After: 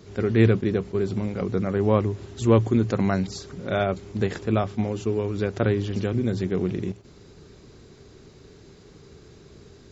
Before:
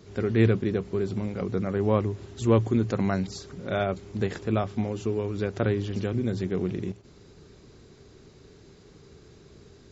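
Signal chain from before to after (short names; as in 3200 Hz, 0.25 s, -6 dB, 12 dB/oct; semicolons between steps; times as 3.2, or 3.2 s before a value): attack slew limiter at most 510 dB/s; gain +3 dB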